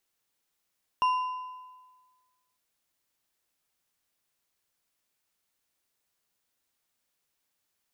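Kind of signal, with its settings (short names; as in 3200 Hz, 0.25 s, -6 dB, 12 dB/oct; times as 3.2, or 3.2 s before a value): metal hit bar, lowest mode 1010 Hz, decay 1.47 s, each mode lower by 12 dB, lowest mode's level -20 dB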